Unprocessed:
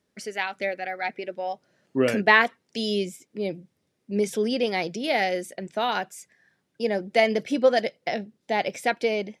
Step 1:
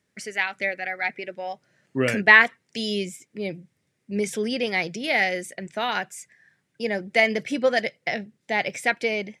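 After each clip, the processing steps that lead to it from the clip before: ten-band EQ 125 Hz +8 dB, 2000 Hz +9 dB, 8000 Hz +7 dB; gain -3 dB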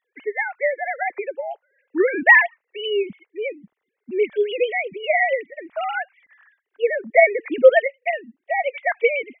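sine-wave speech; gain +4 dB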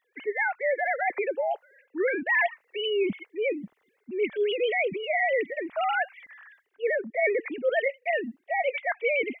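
reverse; compressor 6:1, threshold -27 dBFS, peak gain reduction 20 dB; reverse; transient shaper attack -2 dB, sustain +5 dB; gain +4 dB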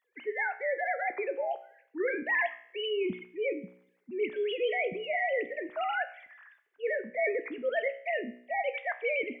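resonator 61 Hz, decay 0.61 s, harmonics all, mix 60%; gain +1 dB

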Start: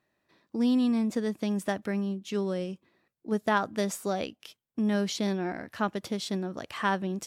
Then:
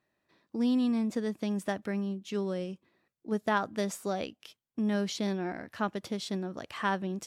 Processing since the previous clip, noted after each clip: high shelf 10000 Hz -4 dB; gain -2.5 dB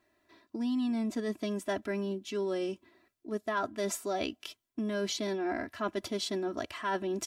comb 3 ms, depth 95%; reverse; compressor 5:1, threshold -34 dBFS, peak gain reduction 12.5 dB; reverse; gain +4 dB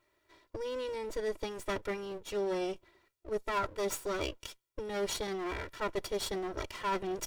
minimum comb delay 2.1 ms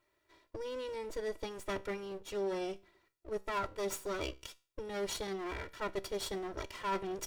resonator 65 Hz, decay 0.36 s, harmonics all, mix 40%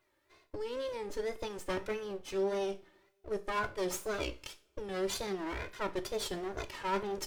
wow and flutter 150 cents; two-slope reverb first 0.33 s, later 2.1 s, from -27 dB, DRR 10 dB; gain +1.5 dB

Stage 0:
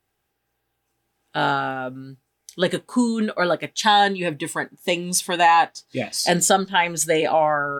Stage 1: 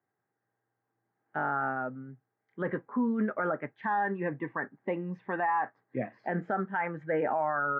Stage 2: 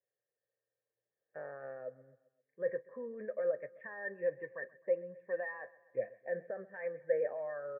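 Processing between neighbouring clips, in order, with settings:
Chebyshev band-pass 110–1900 Hz, order 4; dynamic EQ 1300 Hz, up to +5 dB, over -35 dBFS, Q 2.3; limiter -15 dBFS, peak gain reduction 10.5 dB; gain -6 dB
vocal tract filter e; comb 1.8 ms, depth 58%; feedback echo 0.131 s, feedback 54%, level -21 dB

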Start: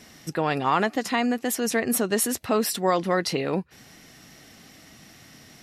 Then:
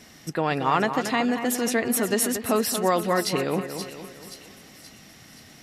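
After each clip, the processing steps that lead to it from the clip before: split-band echo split 2700 Hz, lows 0.23 s, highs 0.527 s, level -9 dB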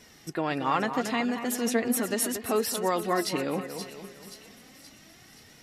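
flange 0.36 Hz, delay 2 ms, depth 3.1 ms, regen +50%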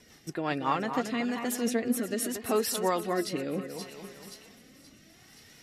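rotary speaker horn 5.5 Hz, later 0.7 Hz, at 0.51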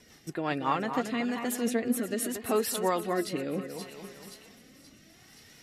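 dynamic EQ 5500 Hz, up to -5 dB, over -55 dBFS, Q 3.1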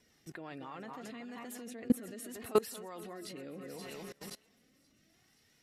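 level quantiser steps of 24 dB; gain +2.5 dB

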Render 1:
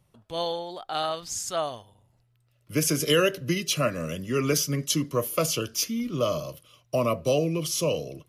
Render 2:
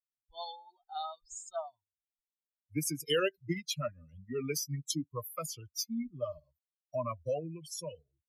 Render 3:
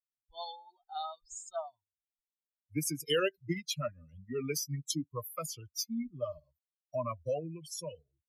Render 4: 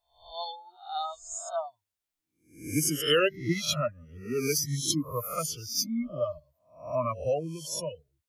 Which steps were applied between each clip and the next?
per-bin expansion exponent 3; gain -4 dB
nothing audible
spectral swells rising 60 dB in 0.46 s; gain +5 dB

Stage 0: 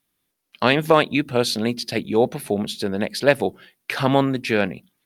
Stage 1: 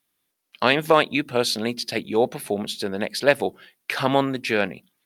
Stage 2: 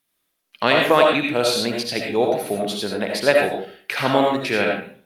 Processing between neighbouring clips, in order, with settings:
low shelf 260 Hz -8 dB
reverb RT60 0.45 s, pre-delay 40 ms, DRR -0.5 dB

